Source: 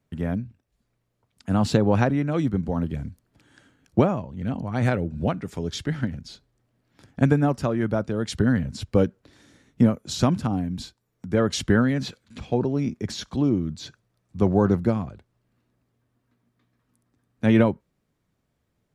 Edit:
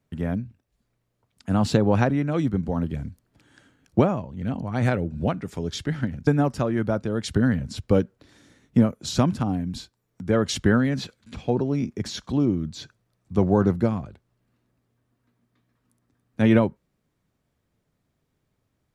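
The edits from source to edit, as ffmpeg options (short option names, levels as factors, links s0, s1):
-filter_complex "[0:a]asplit=2[s0][s1];[s0]atrim=end=6.272[s2];[s1]atrim=start=7.308[s3];[s2][s3]acrossfade=d=0.004:c1=hsin:c2=hsin"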